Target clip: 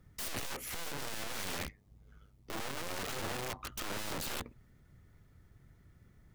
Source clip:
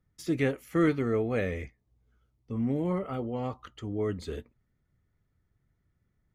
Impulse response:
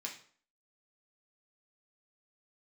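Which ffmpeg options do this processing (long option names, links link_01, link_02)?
-filter_complex "[0:a]alimiter=limit=-22dB:level=0:latency=1:release=27,acompressor=threshold=-40dB:ratio=2,asplit=3[link_01][link_02][link_03];[link_01]afade=type=out:start_time=1.57:duration=0.02[link_04];[link_02]tremolo=f=99:d=0.667,afade=type=in:start_time=1.57:duration=0.02,afade=type=out:start_time=3.71:duration=0.02[link_05];[link_03]afade=type=in:start_time=3.71:duration=0.02[link_06];[link_04][link_05][link_06]amix=inputs=3:normalize=0,aeval=exprs='(tanh(224*val(0)+0.6)-tanh(0.6))/224':channel_layout=same,aeval=exprs='(mod(237*val(0)+1,2)-1)/237':channel_layout=same,volume=15.5dB"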